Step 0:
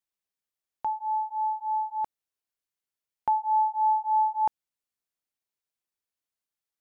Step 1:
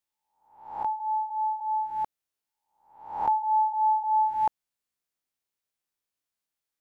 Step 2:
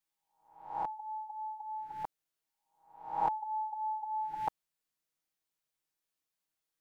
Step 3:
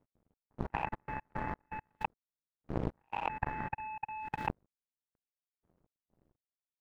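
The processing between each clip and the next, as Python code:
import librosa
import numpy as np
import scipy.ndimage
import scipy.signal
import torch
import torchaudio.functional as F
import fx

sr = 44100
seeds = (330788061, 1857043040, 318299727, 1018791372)

y1 = fx.spec_swells(x, sr, rise_s=0.62)
y2 = y1 + 0.92 * np.pad(y1, (int(6.3 * sr / 1000.0), 0))[:len(y1)]
y2 = y2 * librosa.db_to_amplitude(-3.5)
y3 = fx.dmg_wind(y2, sr, seeds[0], corner_hz=240.0, level_db=-43.0)
y3 = fx.level_steps(y3, sr, step_db=13)
y3 = fx.power_curve(y3, sr, exponent=3.0)
y3 = y3 * librosa.db_to_amplitude(14.5)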